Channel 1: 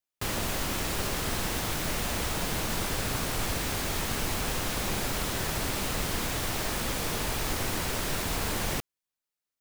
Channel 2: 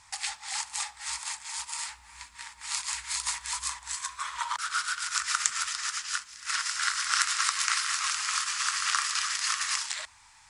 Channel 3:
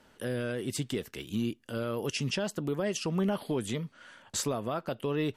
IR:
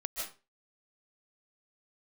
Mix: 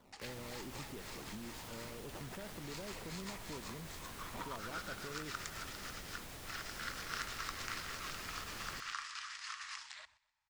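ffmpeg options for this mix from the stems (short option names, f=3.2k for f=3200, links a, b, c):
-filter_complex "[0:a]volume=-15dB,asplit=2[a][b];[b]volume=-21dB[c];[1:a]lowpass=4.6k,agate=range=-15dB:threshold=-51dB:ratio=16:detection=peak,volume=-14dB,asplit=2[d][e];[e]volume=-22.5dB[f];[2:a]acompressor=threshold=-34dB:ratio=6,acrusher=samples=16:mix=1:aa=0.000001:lfo=1:lforange=25.6:lforate=2.8,volume=-3.5dB[g];[a][g]amix=inputs=2:normalize=0,asoftclip=type=tanh:threshold=-34dB,alimiter=level_in=16dB:limit=-24dB:level=0:latency=1:release=396,volume=-16dB,volume=0dB[h];[c][f]amix=inputs=2:normalize=0,aecho=0:1:126|252|378|504|630:1|0.34|0.116|0.0393|0.0134[i];[d][h][i]amix=inputs=3:normalize=0"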